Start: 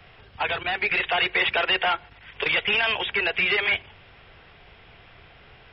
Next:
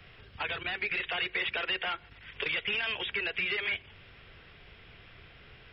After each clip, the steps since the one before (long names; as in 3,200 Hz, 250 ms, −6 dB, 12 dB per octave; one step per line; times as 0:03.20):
parametric band 800 Hz −8 dB 0.92 octaves
downward compressor 2 to 1, threshold −32 dBFS, peak gain reduction 7.5 dB
level −2 dB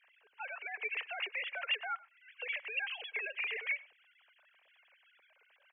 three sine waves on the formant tracks
tape wow and flutter 25 cents
slap from a distant wall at 17 metres, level −22 dB
level −6 dB